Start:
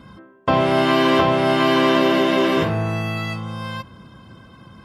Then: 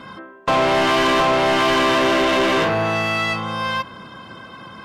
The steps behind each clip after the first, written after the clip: overdrive pedal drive 24 dB, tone 3.5 kHz, clips at -4.5 dBFS; trim -5.5 dB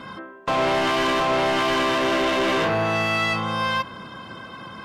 peak limiter -16.5 dBFS, peak gain reduction 6 dB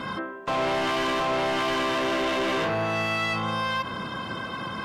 peak limiter -26 dBFS, peak gain reduction 9.5 dB; trim +5 dB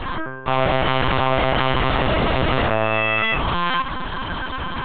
LPC vocoder at 8 kHz pitch kept; trim +7 dB

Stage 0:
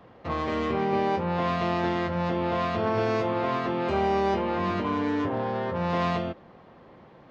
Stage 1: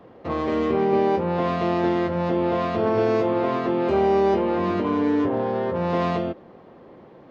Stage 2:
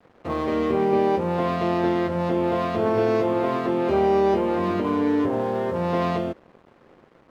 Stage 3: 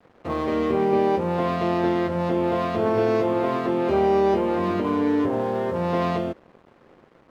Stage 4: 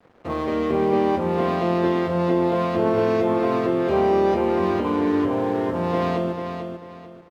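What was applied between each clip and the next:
peaking EQ 370 Hz +8.5 dB 1.8 oct; trim -1 dB
crossover distortion -48 dBFS
no audible change
feedback delay 443 ms, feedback 29%, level -7 dB

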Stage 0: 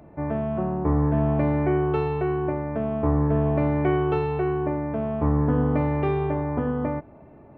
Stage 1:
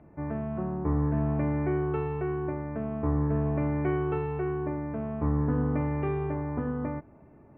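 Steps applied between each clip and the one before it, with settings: low-pass 2.5 kHz 24 dB/octave; peaking EQ 650 Hz -5 dB 1 oct; trim -4.5 dB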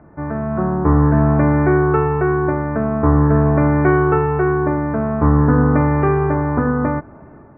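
level rider gain up to 5.5 dB; resonant low-pass 1.5 kHz, resonance Q 2.3; trim +7.5 dB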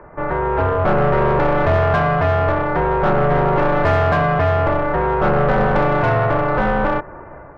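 overdrive pedal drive 23 dB, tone 1.2 kHz, clips at -2 dBFS; ring modulator 280 Hz; trim -2 dB

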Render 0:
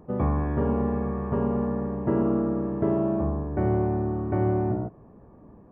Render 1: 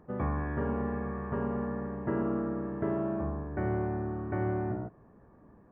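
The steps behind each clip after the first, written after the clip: peaking EQ 1.7 kHz +10 dB 0.94 oct; trim -7.5 dB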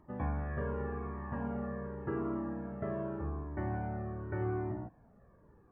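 Shepard-style flanger falling 0.85 Hz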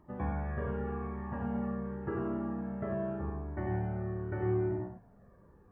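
gated-style reverb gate 120 ms rising, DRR 3.5 dB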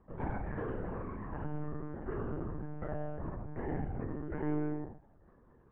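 monotone LPC vocoder at 8 kHz 150 Hz; trim -2.5 dB

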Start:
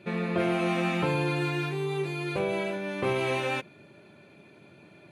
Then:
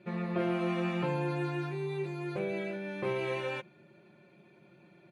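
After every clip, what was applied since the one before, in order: treble shelf 5.1 kHz -9.5 dB; comb 5.6 ms, depth 66%; trim -7.5 dB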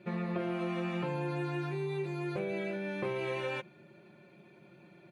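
compression, threshold -33 dBFS, peak gain reduction 7 dB; trim +2 dB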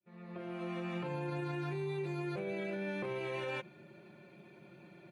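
fade-in on the opening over 1.41 s; peak limiter -31.5 dBFS, peak gain reduction 8.5 dB; trim +1 dB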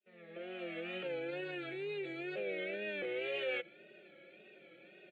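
wow and flutter 99 cents; cabinet simulation 450–7000 Hz, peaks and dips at 510 Hz +7 dB, 3.2 kHz +6 dB, 5.3 kHz -7 dB; static phaser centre 2.4 kHz, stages 4; trim +3 dB

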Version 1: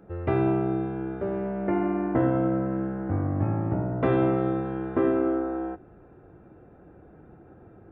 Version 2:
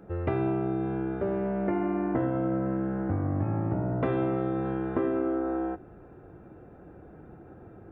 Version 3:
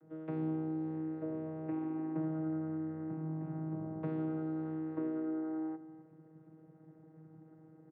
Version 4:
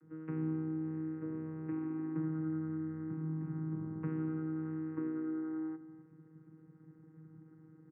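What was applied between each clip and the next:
compression 4:1, threshold -27 dBFS, peak gain reduction 8 dB; trim +2 dB
vocoder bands 16, saw 158 Hz; delay 262 ms -15.5 dB; trim -8 dB
distance through air 88 m; static phaser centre 1.6 kHz, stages 4; trim +2.5 dB

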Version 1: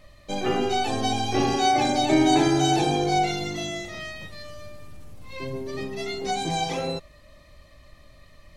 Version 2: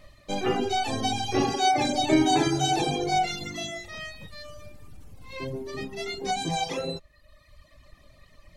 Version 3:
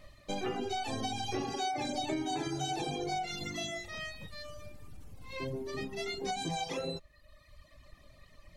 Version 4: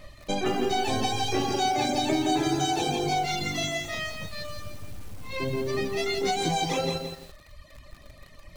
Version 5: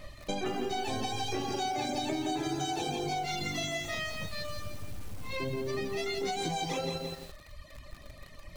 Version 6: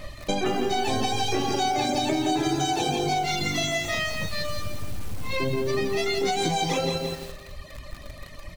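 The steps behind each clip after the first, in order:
reverb removal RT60 1.2 s
compression 6:1, threshold -29 dBFS, peak gain reduction 12.5 dB; trim -3 dB
bit-crushed delay 169 ms, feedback 35%, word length 9-bit, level -5.5 dB; trim +8 dB
compression 3:1, threshold -32 dBFS, peak gain reduction 8.5 dB
feedback delay 194 ms, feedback 48%, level -17 dB; trim +8 dB

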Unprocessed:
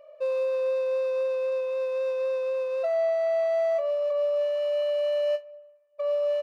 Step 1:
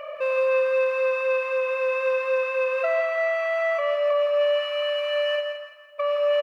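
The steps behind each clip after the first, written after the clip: high-order bell 1.8 kHz +13 dB; in parallel at 0 dB: compressor with a negative ratio -37 dBFS, ratio -1; on the sum: feedback delay 168 ms, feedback 38%, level -7.5 dB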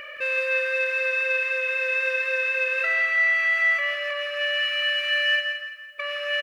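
FFT filter 370 Hz 0 dB, 830 Hz -28 dB, 1.7 kHz +8 dB, 2.4 kHz +3 dB; trim +4 dB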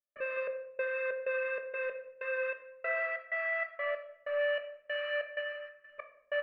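low-pass 1 kHz 12 dB/octave; trance gate ".xx..xx.xx.x." 95 bpm -60 dB; on a send at -6 dB: reverberation RT60 0.75 s, pre-delay 5 ms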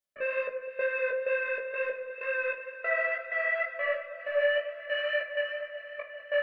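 band-stop 1.2 kHz, Q 12; chorus 2.1 Hz, delay 16 ms, depth 3.5 ms; echo whose repeats swap between lows and highs 200 ms, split 1.2 kHz, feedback 83%, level -12.5 dB; trim +7.5 dB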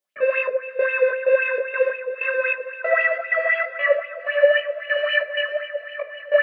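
high-pass 120 Hz 12 dB/octave; sweeping bell 3.8 Hz 420–3000 Hz +13 dB; trim +3.5 dB

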